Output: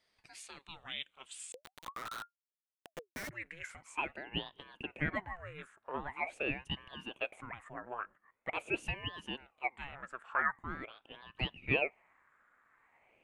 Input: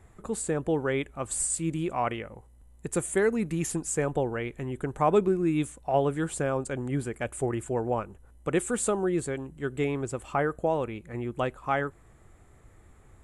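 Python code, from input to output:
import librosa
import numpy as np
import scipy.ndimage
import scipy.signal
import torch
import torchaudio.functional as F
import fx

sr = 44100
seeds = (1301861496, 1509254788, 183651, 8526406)

y = fx.filter_sweep_bandpass(x, sr, from_hz=3300.0, to_hz=1500.0, start_s=1.0, end_s=4.55, q=6.9)
y = fx.schmitt(y, sr, flips_db=-44.0, at=(1.52, 3.31))
y = fx.ring_lfo(y, sr, carrier_hz=760.0, swing_pct=85, hz=0.44)
y = y * 10.0 ** (9.5 / 20.0)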